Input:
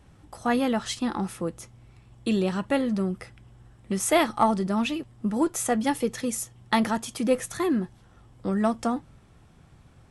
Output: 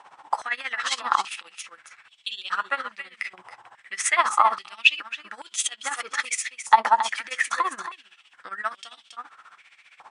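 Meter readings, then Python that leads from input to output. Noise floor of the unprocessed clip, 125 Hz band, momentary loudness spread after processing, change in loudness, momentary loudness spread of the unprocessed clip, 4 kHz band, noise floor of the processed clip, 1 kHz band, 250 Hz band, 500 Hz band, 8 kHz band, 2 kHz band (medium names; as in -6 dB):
-56 dBFS, under -30 dB, 19 LU, +2.0 dB, 10 LU, +6.5 dB, -61 dBFS, +6.5 dB, -27.5 dB, -11.5 dB, +3.0 dB, +9.0 dB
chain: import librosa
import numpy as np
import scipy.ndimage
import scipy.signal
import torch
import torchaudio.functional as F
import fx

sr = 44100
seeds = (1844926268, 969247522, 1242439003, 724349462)

p1 = scipy.signal.sosfilt(scipy.signal.butter(16, 10000.0, 'lowpass', fs=sr, output='sos'), x)
p2 = fx.high_shelf(p1, sr, hz=5200.0, db=-10.5)
p3 = fx.over_compress(p2, sr, threshold_db=-34.0, ratio=-1.0)
p4 = p2 + (p3 * 10.0 ** (1.0 / 20.0))
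p5 = p4 + 10.0 ** (-9.0 / 20.0) * np.pad(p4, (int(275 * sr / 1000.0), 0))[:len(p4)]
p6 = p5 * (1.0 - 0.81 / 2.0 + 0.81 / 2.0 * np.cos(2.0 * np.pi * 15.0 * (np.arange(len(p5)) / sr)))
p7 = fx.filter_held_highpass(p6, sr, hz=2.4, low_hz=920.0, high_hz=3200.0)
y = p7 * 10.0 ** (2.0 / 20.0)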